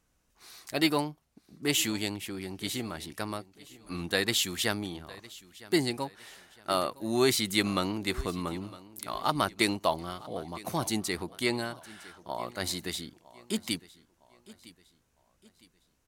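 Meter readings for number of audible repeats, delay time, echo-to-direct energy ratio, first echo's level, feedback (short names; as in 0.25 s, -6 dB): 2, 0.959 s, -19.5 dB, -20.0 dB, 39%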